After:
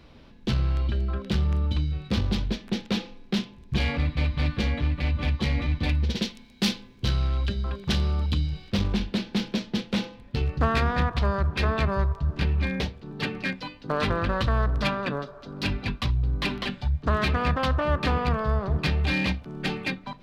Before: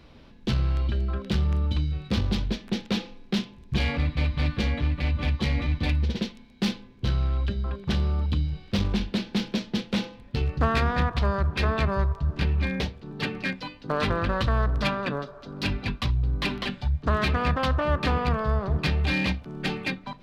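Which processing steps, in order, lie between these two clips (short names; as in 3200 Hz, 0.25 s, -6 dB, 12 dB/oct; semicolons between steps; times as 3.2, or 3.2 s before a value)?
6.09–8.7 high shelf 2900 Hz +9 dB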